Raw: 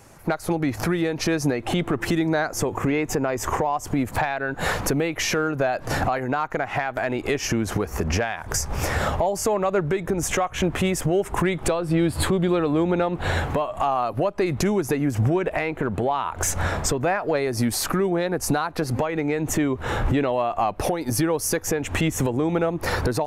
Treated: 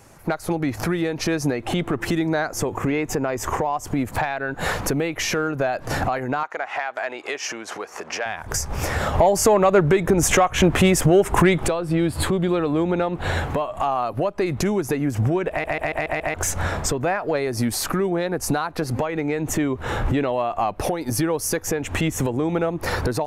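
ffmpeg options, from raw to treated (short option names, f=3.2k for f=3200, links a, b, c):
-filter_complex "[0:a]asettb=1/sr,asplit=3[a][b][c];[a]atrim=end=6.434[d];[b]atrim=start=6.43:end=8.26,asetpts=PTS-STARTPTS,afade=t=in:d=0.004:c=qsin,afade=t=out:st=1.826:d=0.004:c=qsin,highpass=590,lowpass=7.6k[e];[c]atrim=start=8.256[f];[d][e]acrossfade=d=0.004:c1=hsin:c2=qsin[g];[g][f]acrossfade=d=0.004:c1=qsin:c2=hsin,asplit=3[h][i][j];[h]afade=t=out:st=9.14:d=0.02[k];[i]acontrast=71,afade=t=in:st=9.14:d=0.02,afade=t=out:st=11.65:d=0.02[l];[j]afade=t=in:st=11.65:d=0.02[m];[k][l][m]amix=inputs=3:normalize=0,asplit=7[n][o][p][q][r][s][t];[n]atrim=end=15.642[u];[o]atrim=start=15.498:end=15.642[v];[p]atrim=start=15.498:end=15.642[w];[q]atrim=start=15.498:end=15.642[x];[r]atrim=start=15.498:end=15.642[y];[s]atrim=start=15.498:end=15.642[z];[t]atrim=start=16.338[aa];[u][v]acrossfade=d=0.004:c1=hsin:c2=hsin[ab];[ab][w]acrossfade=d=0.004:c1=hsin:c2=hsin[ac];[ac][x]acrossfade=d=0.004:c1=hsin:c2=hsin[ad];[ad][y]acrossfade=d=0.004:c1=hsin:c2=hsin[ae];[ae][z]acrossfade=d=0.004:c1=hsin:c2=hsin[af];[af][aa]acrossfade=d=0.004:c1=hsin:c2=hsin"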